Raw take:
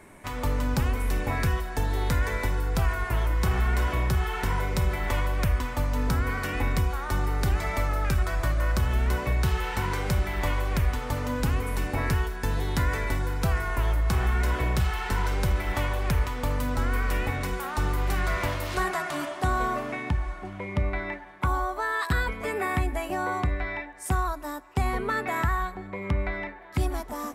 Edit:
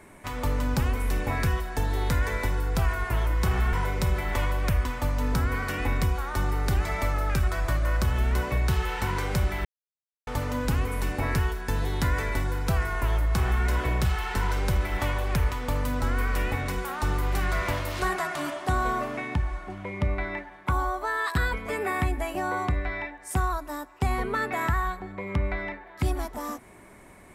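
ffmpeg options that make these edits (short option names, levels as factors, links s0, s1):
-filter_complex "[0:a]asplit=4[s0][s1][s2][s3];[s0]atrim=end=3.732[s4];[s1]atrim=start=4.478:end=10.4,asetpts=PTS-STARTPTS,afade=t=out:st=5.918:d=0.004:c=hsin[s5];[s2]atrim=start=10.4:end=11.02,asetpts=PTS-STARTPTS,volume=0[s6];[s3]atrim=start=11.02,asetpts=PTS-STARTPTS,afade=t=in:d=0.004:c=hsin[s7];[s5][s6][s7]concat=n=3:v=0:a=1[s8];[s4][s8]acrossfade=d=0.004:c1=hsin:c2=hsin"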